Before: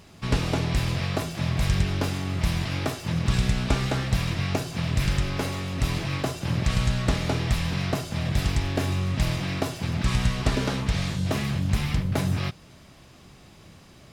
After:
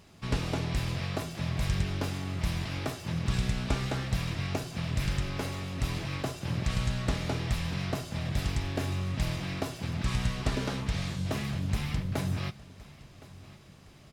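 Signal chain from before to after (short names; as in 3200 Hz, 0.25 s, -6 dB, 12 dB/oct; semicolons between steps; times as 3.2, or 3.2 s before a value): feedback echo 1.065 s, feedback 44%, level -20 dB; gain -6 dB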